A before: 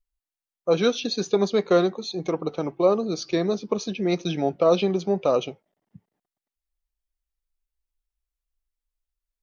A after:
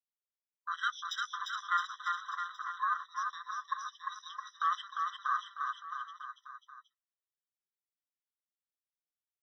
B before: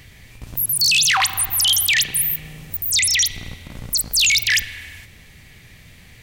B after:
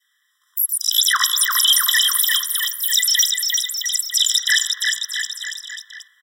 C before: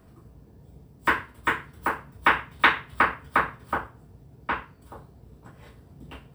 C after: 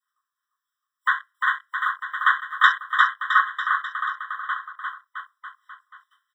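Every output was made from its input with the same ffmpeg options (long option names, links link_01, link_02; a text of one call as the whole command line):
ffmpeg -i in.wav -af "afwtdn=0.0282,adynamicequalizer=threshold=0.0251:dfrequency=1000:dqfactor=0.75:tfrequency=1000:tqfactor=0.75:attack=5:release=100:ratio=0.375:range=2:mode=cutabove:tftype=bell,aecho=1:1:350|665|948.5|1204|1433:0.631|0.398|0.251|0.158|0.1,afftfilt=real='re*eq(mod(floor(b*sr/1024/1000),2),1)':imag='im*eq(mod(floor(b*sr/1024/1000),2),1)':win_size=1024:overlap=0.75,volume=3dB" out.wav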